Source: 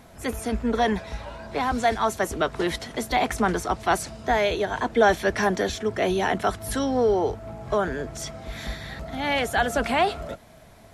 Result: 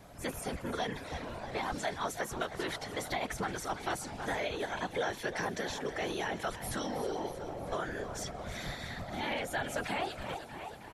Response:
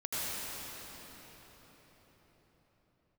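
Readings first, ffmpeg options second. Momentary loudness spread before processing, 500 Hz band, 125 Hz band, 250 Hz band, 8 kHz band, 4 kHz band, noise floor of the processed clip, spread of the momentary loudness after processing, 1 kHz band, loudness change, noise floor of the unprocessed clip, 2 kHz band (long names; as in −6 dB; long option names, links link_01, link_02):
13 LU, −13.0 dB, −9.5 dB, −12.5 dB, −7.5 dB, −8.0 dB, −47 dBFS, 6 LU, −12.0 dB, −12.0 dB, −49 dBFS, −9.5 dB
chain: -filter_complex "[0:a]asplit=7[link_01][link_02][link_03][link_04][link_05][link_06][link_07];[link_02]adelay=317,afreqshift=34,volume=-15dB[link_08];[link_03]adelay=634,afreqshift=68,volume=-19.9dB[link_09];[link_04]adelay=951,afreqshift=102,volume=-24.8dB[link_10];[link_05]adelay=1268,afreqshift=136,volume=-29.6dB[link_11];[link_06]adelay=1585,afreqshift=170,volume=-34.5dB[link_12];[link_07]adelay=1902,afreqshift=204,volume=-39.4dB[link_13];[link_01][link_08][link_09][link_10][link_11][link_12][link_13]amix=inputs=7:normalize=0,afftfilt=real='hypot(re,im)*cos(2*PI*random(0))':imag='hypot(re,im)*sin(2*PI*random(1))':win_size=512:overlap=0.75,acrossover=split=620|1600[link_14][link_15][link_16];[link_14]acompressor=threshold=-40dB:ratio=4[link_17];[link_15]acompressor=threshold=-42dB:ratio=4[link_18];[link_16]acompressor=threshold=-41dB:ratio=4[link_19];[link_17][link_18][link_19]amix=inputs=3:normalize=0,volume=1.5dB"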